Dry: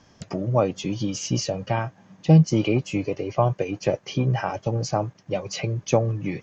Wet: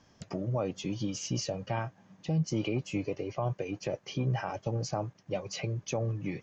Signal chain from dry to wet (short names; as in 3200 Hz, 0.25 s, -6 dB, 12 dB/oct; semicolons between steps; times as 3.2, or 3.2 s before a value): limiter -14.5 dBFS, peak gain reduction 10 dB; gain -7 dB